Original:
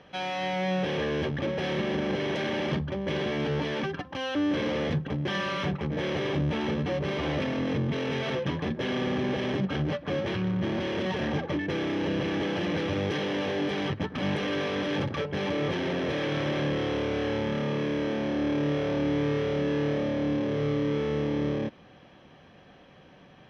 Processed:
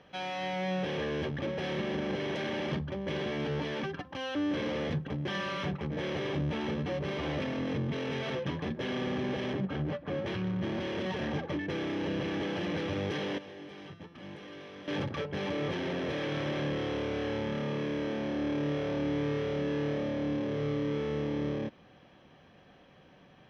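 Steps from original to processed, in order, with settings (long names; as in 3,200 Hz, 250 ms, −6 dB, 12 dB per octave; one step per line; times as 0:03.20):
0:09.53–0:10.26: high-shelf EQ 3,300 Hz −10 dB
0:13.38–0:14.88: tuned comb filter 170 Hz, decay 1.1 s, mix 80%
level −4.5 dB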